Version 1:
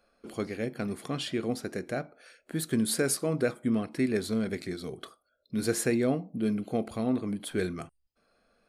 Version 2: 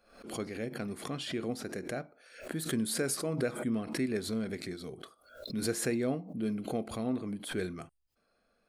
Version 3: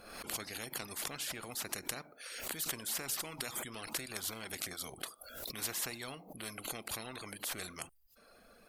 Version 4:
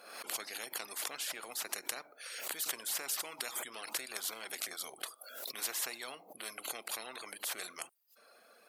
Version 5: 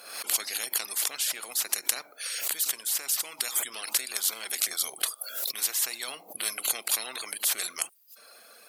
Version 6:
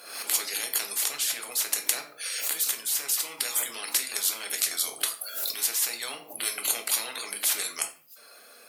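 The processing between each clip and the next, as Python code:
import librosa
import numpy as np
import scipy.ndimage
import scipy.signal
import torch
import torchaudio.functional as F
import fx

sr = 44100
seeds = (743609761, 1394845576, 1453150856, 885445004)

y1 = fx.pre_swell(x, sr, db_per_s=98.0)
y1 = y1 * librosa.db_to_amplitude(-5.0)
y2 = fx.dereverb_blind(y1, sr, rt60_s=0.56)
y2 = fx.peak_eq(y2, sr, hz=13000.0, db=11.0, octaves=0.66)
y2 = fx.spectral_comp(y2, sr, ratio=4.0)
y2 = y2 * librosa.db_to_amplitude(1.0)
y3 = scipy.signal.sosfilt(scipy.signal.butter(2, 450.0, 'highpass', fs=sr, output='sos'), y2)
y3 = y3 * librosa.db_to_amplitude(1.0)
y4 = fx.high_shelf(y3, sr, hz=2600.0, db=11.5)
y4 = fx.rider(y4, sr, range_db=4, speed_s=0.5)
y4 = y4 * librosa.db_to_amplitude(1.5)
y5 = fx.room_shoebox(y4, sr, seeds[0], volume_m3=37.0, walls='mixed', distance_m=0.41)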